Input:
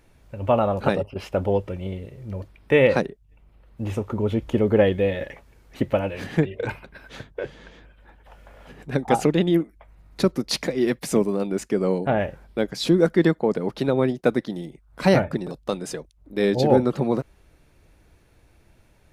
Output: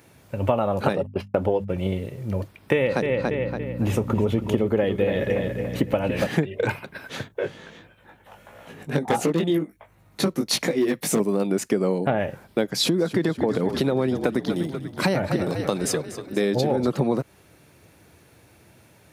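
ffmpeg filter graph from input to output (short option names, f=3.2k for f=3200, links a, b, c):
-filter_complex "[0:a]asettb=1/sr,asplit=3[a][b][c];[a]atrim=end=0.934[d];[b]atrim=start=0.93:end=1.78,asetpts=PTS-STARTPTS,afade=t=in:d=0.004:c=qsin,afade=t=out:st=0.846:d=0.004:c=qsin,agate=range=-55dB:threshold=-35dB:ratio=16:release=100:detection=peak,highshelf=f=3.9k:g=-6,bandreject=f=50:t=h:w=6,bandreject=f=100:t=h:w=6,bandreject=f=150:t=h:w=6,bandreject=f=200:t=h:w=6,bandreject=f=250:t=h:w=6[e];[c]atrim=start=1.776[f];[d][e]acrossfade=d=0.004:c1=hsin:c2=qsin[g];[g][f]acrossfade=d=0.004:c1=qsin:c2=hsin,asettb=1/sr,asplit=3[h][i][j];[h]atrim=end=2.744[k];[i]atrim=start=2.74:end=6.27,asetpts=PTS-STARTPTS,afade=t=in:d=0.004:c=qsin,afade=t=out:st=3.526:d=0.004:c=qsin,asplit=2[l][m];[m]adelay=284,lowpass=f=4.4k:p=1,volume=-8.5dB,asplit=2[n][o];[o]adelay=284,lowpass=f=4.4k:p=1,volume=0.4,asplit=2[p][q];[q]adelay=284,lowpass=f=4.4k:p=1,volume=0.4,asplit=2[r][s];[s]adelay=284,lowpass=f=4.4k:p=1,volume=0.4[t];[l][n][p][r][t]amix=inputs=5:normalize=0,atrim=end_sample=155673,aeval=exprs='val(0)+0.0251*(sin(2*PI*60*n/s)+sin(2*PI*2*60*n/s)/2+sin(2*PI*3*60*n/s)/3+sin(2*PI*4*60*n/s)/4+sin(2*PI*5*60*n/s)/5)':c=same[u];[j]atrim=start=6.266[v];[k][u]acrossfade=d=0.004:c1=hsin:c2=qsin[w];[w][v]acrossfade=d=0.004:c1=qsin:c2=hsin,asettb=1/sr,asplit=3[x][y][z];[x]atrim=end=7.284[aa];[y]atrim=start=7.28:end=11.2,asetpts=PTS-STARTPTS,afade=t=in:d=0.004:c=qsin,afade=t=out:st=3.916:d=0.004:c=qsin,bandreject=f=4.9k:w=13,flanger=delay=17.5:depth=2.4:speed=1.5,volume=16.5dB,asoftclip=hard,volume=-16.5dB[ab];[z]atrim=start=11.196[ac];[aa][ab]acrossfade=d=0.004:c1=hsin:c2=qsin[ad];[ad][ac]acrossfade=d=0.004:c1=qsin:c2=hsin,asettb=1/sr,asplit=3[ae][af][ag];[ae]atrim=end=12.734[ah];[af]atrim=start=12.73:end=16.88,asetpts=PTS-STARTPTS,afade=t=in:d=0.004:c=qsin,afade=t=out:st=4.146:d=0.004:c=qsin,asplit=7[ai][aj][ak][al][am][an][ao];[aj]adelay=242,afreqshift=-41,volume=-15dB[ap];[ak]adelay=484,afreqshift=-82,volume=-19.4dB[aq];[al]adelay=726,afreqshift=-123,volume=-23.9dB[ar];[am]adelay=968,afreqshift=-164,volume=-28.3dB[as];[an]adelay=1210,afreqshift=-205,volume=-32.7dB[at];[ao]adelay=1452,afreqshift=-246,volume=-37.2dB[au];[ai][ap][aq][ar][as][at][au]amix=inputs=7:normalize=0,atrim=end_sample=183015,acompressor=threshold=-21dB:ratio=2.5:attack=3.2:release=140:knee=1:detection=peak[av];[ag]atrim=start=16.876[aw];[ah][av]acrossfade=d=0.004:c1=hsin:c2=qsin[ax];[ax][aw]acrossfade=d=0.004:c1=qsin:c2=hsin,highpass=f=92:w=0.5412,highpass=f=92:w=1.3066,highshelf=f=9.8k:g=8.5,acompressor=threshold=-24dB:ratio=10,volume=6.5dB"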